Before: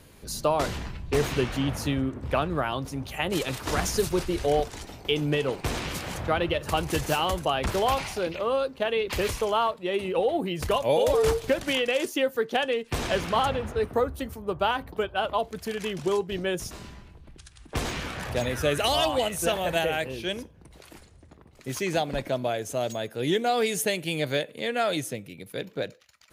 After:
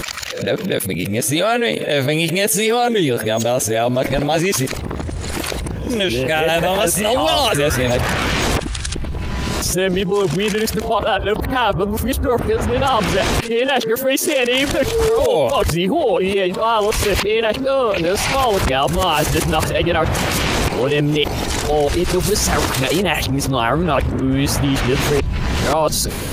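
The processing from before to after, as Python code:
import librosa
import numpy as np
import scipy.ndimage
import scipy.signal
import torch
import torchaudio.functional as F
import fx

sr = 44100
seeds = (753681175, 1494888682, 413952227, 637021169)

y = np.flip(x).copy()
y = fx.env_flatten(y, sr, amount_pct=70)
y = F.gain(torch.from_numpy(y), 5.0).numpy()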